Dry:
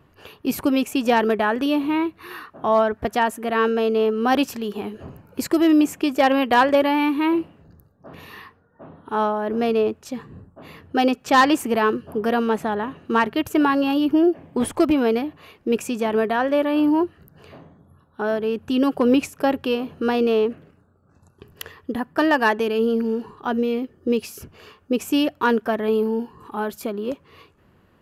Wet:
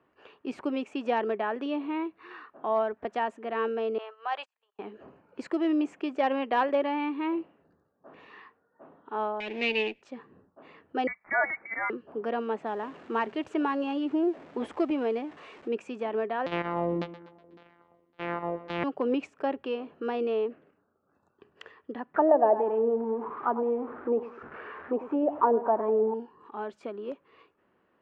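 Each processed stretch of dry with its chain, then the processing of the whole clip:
0:03.98–0:04.79: noise gate −23 dBFS, range −35 dB + high-pass filter 730 Hz 24 dB per octave + parametric band 5,600 Hz −9 dB 0.21 octaves
0:09.40–0:10.02: lower of the sound and its delayed copy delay 0.42 ms + low-pass filter 7,000 Hz + high shelf with overshoot 1,800 Hz +12.5 dB, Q 3
0:11.07–0:11.90: high-pass filter 250 Hz 6 dB per octave + spectral tilt +2 dB per octave + voice inversion scrambler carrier 2,500 Hz
0:12.66–0:15.68: converter with a step at zero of −35.5 dBFS + high-shelf EQ 7,800 Hz +3 dB
0:16.46–0:18.84: samples sorted by size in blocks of 256 samples + auto-filter low-pass saw down 1.8 Hz 280–4,400 Hz + repeating echo 123 ms, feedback 47%, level −15 dB
0:22.14–0:26.14: converter with a step at zero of −31 dBFS + repeating echo 101 ms, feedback 32%, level −13 dB + envelope-controlled low-pass 660–1,800 Hz down, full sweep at −13.5 dBFS
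whole clip: dynamic equaliser 1,500 Hz, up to −4 dB, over −36 dBFS, Q 1.9; Butterworth low-pass 8,300 Hz; three-way crossover with the lows and the highs turned down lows −19 dB, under 240 Hz, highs −17 dB, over 3,000 Hz; level −8 dB

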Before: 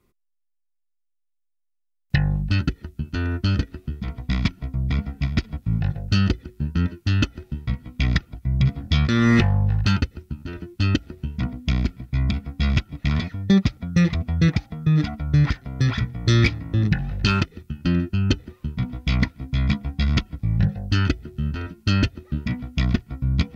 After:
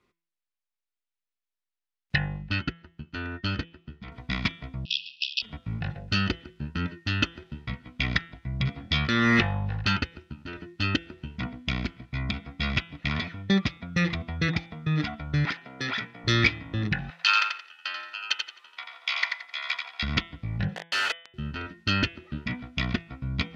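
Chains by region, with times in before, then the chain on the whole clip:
0:02.25–0:04.12: high-frequency loss of the air 53 metres + expander for the loud parts, over −41 dBFS
0:04.85–0:05.42: leveller curve on the samples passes 5 + linear-phase brick-wall band-pass 2,500–5,700 Hz
0:15.45–0:16.24: high-pass filter 250 Hz + notch filter 1,100 Hz, Q 13
0:17.10–0:20.03: high-pass filter 810 Hz 24 dB per octave + high-shelf EQ 5,800 Hz +5 dB + repeating echo 87 ms, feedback 26%, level −5 dB
0:20.75–0:21.34: Butterworth high-pass 440 Hz 72 dB per octave + log-companded quantiser 2 bits
whole clip: low-pass filter 3,100 Hz 12 dB per octave; spectral tilt +3 dB per octave; hum removal 167.8 Hz, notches 22

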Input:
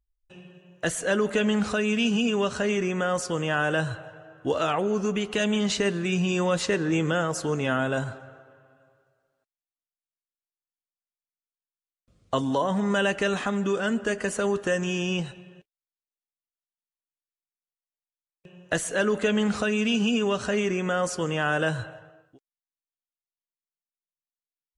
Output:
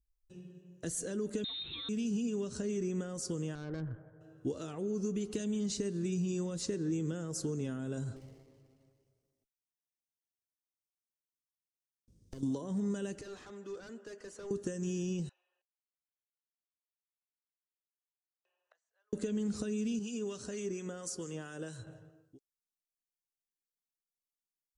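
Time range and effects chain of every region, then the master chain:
0:01.44–0:01.89: power curve on the samples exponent 0.7 + voice inversion scrambler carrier 3,900 Hz
0:03.55–0:04.21: elliptic low-pass filter 1,900 Hz + tube saturation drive 23 dB, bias 0.7
0:08.16–0:12.43: lower of the sound and its delayed copy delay 0.35 ms + downward compressor 16 to 1, threshold −36 dBFS
0:13.21–0:14.51: high-pass filter 720 Hz + hard clipping −31 dBFS + head-to-tape spacing loss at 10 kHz 21 dB
0:15.29–0:19.13: gate with flip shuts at −30 dBFS, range −28 dB + Butterworth high-pass 740 Hz + head-to-tape spacing loss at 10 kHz 38 dB
0:19.99–0:21.87: low-shelf EQ 340 Hz −10.5 dB + two-band tremolo in antiphase 4.3 Hz, depth 50%, crossover 1,100 Hz + floating-point word with a short mantissa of 8 bits
whole clip: downward compressor, threshold −28 dBFS; flat-topped bell 1,400 Hz −15.5 dB 2.9 octaves; level −2 dB

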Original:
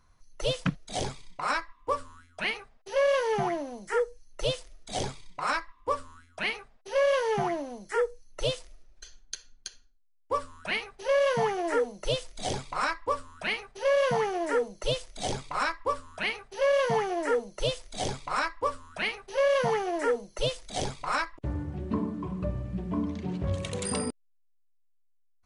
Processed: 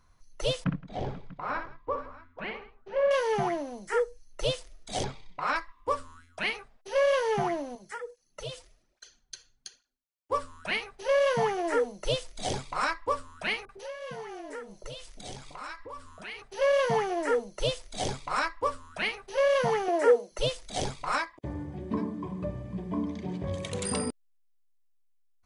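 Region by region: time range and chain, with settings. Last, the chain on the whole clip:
0:00.64–0:03.11: head-to-tape spacing loss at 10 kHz 40 dB + multi-tap delay 61/168/487/641 ms −7/−19.5/−17.5/−19 dB
0:05.04–0:05.56: low-pass filter 3,900 Hz + hum removal 113 Hz, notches 9
0:07.75–0:10.32: downward compressor 2.5 to 1, threshold −32 dBFS + through-zero flanger with one copy inverted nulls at 1.2 Hz, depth 5.1 ms
0:13.65–0:16.42: downward compressor 2.5 to 1, threshold −41 dBFS + multiband delay without the direct sound lows, highs 40 ms, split 670 Hz
0:19.88–0:20.32: high-pass filter 300 Hz + parametric band 520 Hz +7.5 dB 1.2 octaves
0:21.18–0:23.71: notch comb filter 1,400 Hz + single-tap delay 789 ms −20.5 dB
whole clip: no processing

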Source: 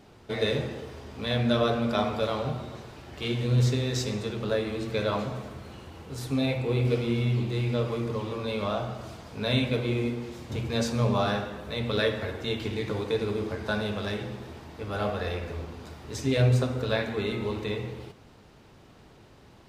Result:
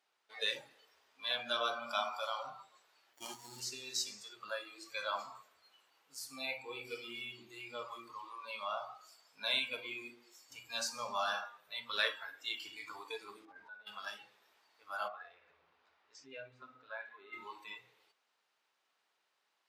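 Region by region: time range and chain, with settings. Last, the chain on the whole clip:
0:03.13–0:03.60: flat-topped bell 5,500 Hz +9 dB + windowed peak hold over 33 samples
0:13.45–0:13.87: low-pass filter 1,100 Hz 6 dB per octave + compressor whose output falls as the input rises −35 dBFS
0:15.08–0:17.33: downward compressor 1.5 to 1, threshold −36 dBFS + Bessel low-pass filter 2,600 Hz
whole clip: high-pass filter 1,100 Hz 12 dB per octave; noise reduction from a noise print of the clip's start 17 dB; level −1.5 dB

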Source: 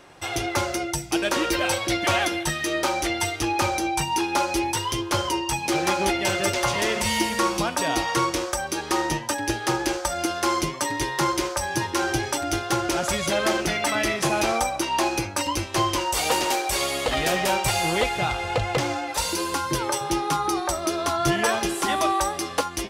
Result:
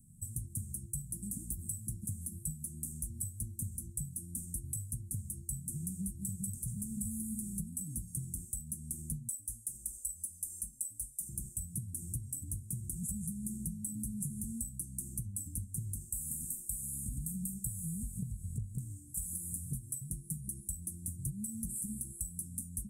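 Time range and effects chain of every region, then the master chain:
0:09.29–0:11.29: low shelf with overshoot 420 Hz −12 dB, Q 3 + comb filter 3.5 ms, depth 98%
whole clip: Chebyshev band-stop filter 220–8,400 Hz, order 5; parametric band 6,900 Hz +6.5 dB 0.46 octaves; downward compressor 10 to 1, threshold −36 dBFS; level +1 dB

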